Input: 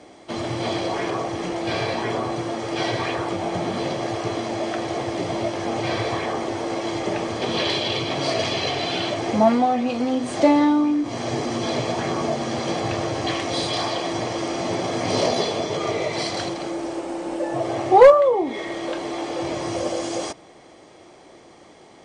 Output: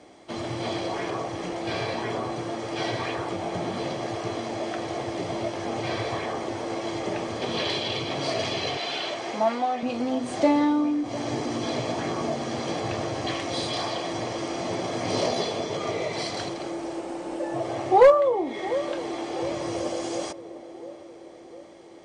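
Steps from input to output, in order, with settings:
0:08.77–0:09.83: meter weighting curve A
feedback echo with a band-pass in the loop 703 ms, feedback 61%, band-pass 400 Hz, level −13 dB
level −4.5 dB

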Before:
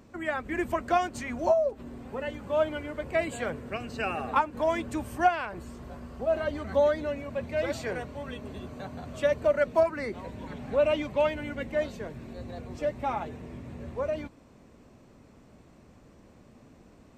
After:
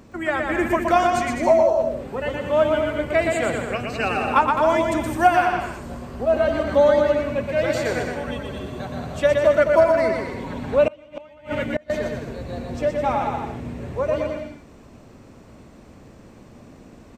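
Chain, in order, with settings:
bouncing-ball delay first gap 120 ms, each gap 0.75×, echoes 5
0:10.87–0:11.90: gate with flip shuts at −18 dBFS, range −28 dB
level +7 dB

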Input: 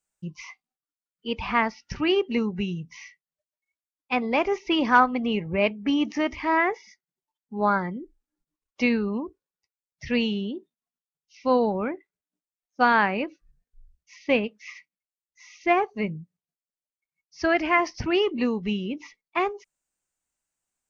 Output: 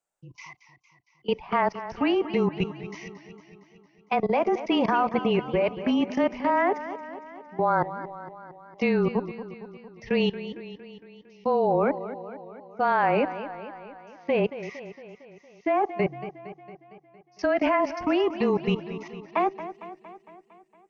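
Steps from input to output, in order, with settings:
parametric band 700 Hz +13 dB 2.1 octaves
output level in coarse steps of 22 dB
frequency shifter −23 Hz
feedback echo with a swinging delay time 229 ms, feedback 61%, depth 90 cents, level −13 dB

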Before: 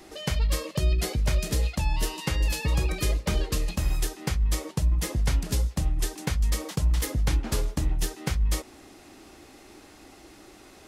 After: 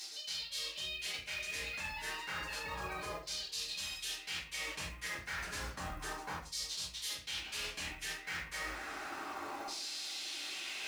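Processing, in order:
auto-filter band-pass saw down 0.31 Hz 980–4,700 Hz
in parallel at −3 dB: upward compression, threshold −46 dBFS
on the sum: rectangular room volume 52 cubic metres, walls mixed, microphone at 2.2 metres
floating-point word with a short mantissa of 4 bits
high-shelf EQ 4,800 Hz +10.5 dB
reversed playback
downward compressor 12 to 1, threshold −38 dBFS, peak gain reduction 21 dB
reversed playback

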